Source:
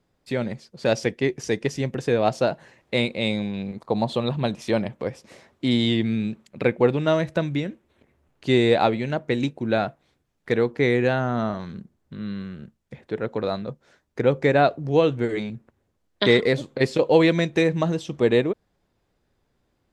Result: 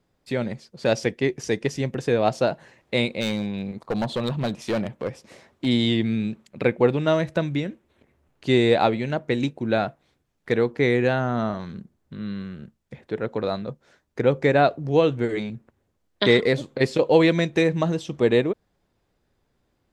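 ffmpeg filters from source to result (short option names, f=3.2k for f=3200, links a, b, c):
-filter_complex "[0:a]asplit=3[a][b][c];[a]afade=t=out:st=3.2:d=0.02[d];[b]asoftclip=type=hard:threshold=-20dB,afade=t=in:st=3.2:d=0.02,afade=t=out:st=5.65:d=0.02[e];[c]afade=t=in:st=5.65:d=0.02[f];[d][e][f]amix=inputs=3:normalize=0"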